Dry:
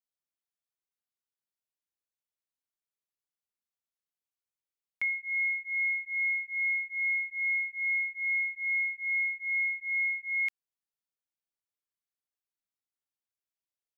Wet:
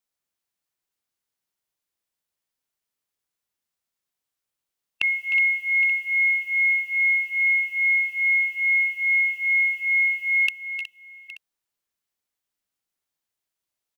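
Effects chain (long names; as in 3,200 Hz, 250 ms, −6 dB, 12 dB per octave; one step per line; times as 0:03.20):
formants moved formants +4 semitones
multi-tap delay 307/320/367/368/816/881 ms −12/−19/−13.5/−16.5/−17.5/−19.5 dB
level +8 dB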